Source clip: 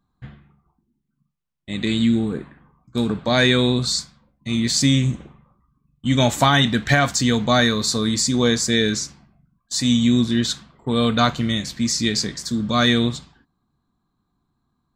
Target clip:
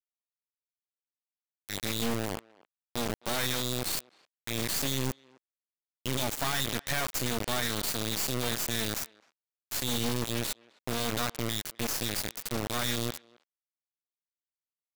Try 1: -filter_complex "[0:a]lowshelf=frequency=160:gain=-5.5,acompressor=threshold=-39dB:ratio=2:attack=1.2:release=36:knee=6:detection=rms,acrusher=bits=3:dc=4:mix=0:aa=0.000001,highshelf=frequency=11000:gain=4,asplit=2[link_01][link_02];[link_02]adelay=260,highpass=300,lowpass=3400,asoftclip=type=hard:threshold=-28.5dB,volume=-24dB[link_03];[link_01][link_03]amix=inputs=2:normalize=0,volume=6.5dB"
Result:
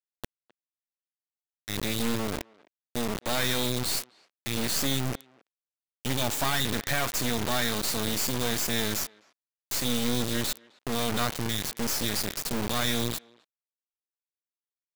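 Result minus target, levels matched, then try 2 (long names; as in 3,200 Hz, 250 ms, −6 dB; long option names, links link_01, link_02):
downward compressor: peak gain reduction −4 dB
-filter_complex "[0:a]lowshelf=frequency=160:gain=-5.5,acompressor=threshold=-47dB:ratio=2:attack=1.2:release=36:knee=6:detection=rms,acrusher=bits=3:dc=4:mix=0:aa=0.000001,highshelf=frequency=11000:gain=4,asplit=2[link_01][link_02];[link_02]adelay=260,highpass=300,lowpass=3400,asoftclip=type=hard:threshold=-28.5dB,volume=-24dB[link_03];[link_01][link_03]amix=inputs=2:normalize=0,volume=6.5dB"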